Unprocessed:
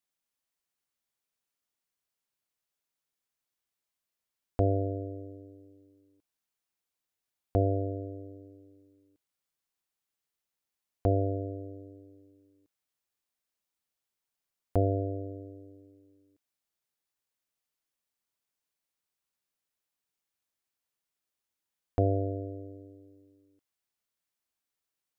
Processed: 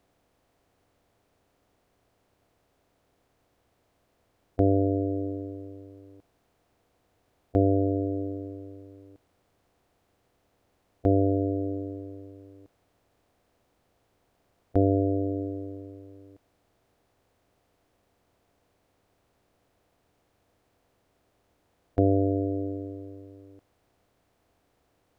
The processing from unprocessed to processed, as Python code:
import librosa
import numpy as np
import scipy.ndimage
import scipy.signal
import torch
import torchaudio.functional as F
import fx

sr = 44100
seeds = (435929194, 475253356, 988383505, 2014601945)

y = fx.bin_compress(x, sr, power=0.6)
y = fx.dynamic_eq(y, sr, hz=290.0, q=1.2, threshold_db=-44.0, ratio=4.0, max_db=8)